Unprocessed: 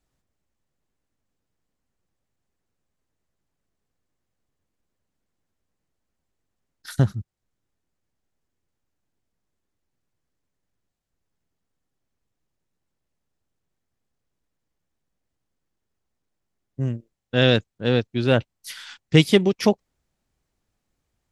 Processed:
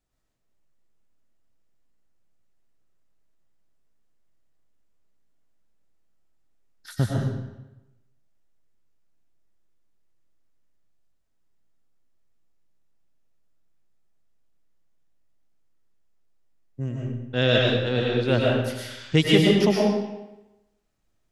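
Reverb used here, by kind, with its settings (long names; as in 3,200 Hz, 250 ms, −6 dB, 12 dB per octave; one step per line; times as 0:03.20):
comb and all-pass reverb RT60 0.99 s, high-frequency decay 0.85×, pre-delay 75 ms, DRR −3.5 dB
level −5 dB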